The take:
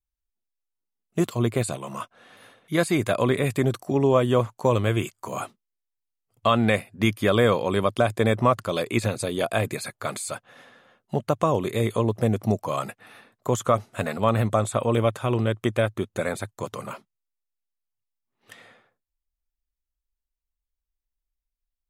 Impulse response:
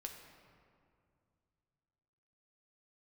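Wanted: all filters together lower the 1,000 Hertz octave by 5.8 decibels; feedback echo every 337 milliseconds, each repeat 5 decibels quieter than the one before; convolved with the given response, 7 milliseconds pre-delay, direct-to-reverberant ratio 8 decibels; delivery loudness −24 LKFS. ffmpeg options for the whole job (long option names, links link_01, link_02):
-filter_complex "[0:a]equalizer=frequency=1000:width_type=o:gain=-7.5,aecho=1:1:337|674|1011|1348|1685|2022|2359:0.562|0.315|0.176|0.0988|0.0553|0.031|0.0173,asplit=2[link_01][link_02];[1:a]atrim=start_sample=2205,adelay=7[link_03];[link_02][link_03]afir=irnorm=-1:irlink=0,volume=-4.5dB[link_04];[link_01][link_04]amix=inputs=2:normalize=0"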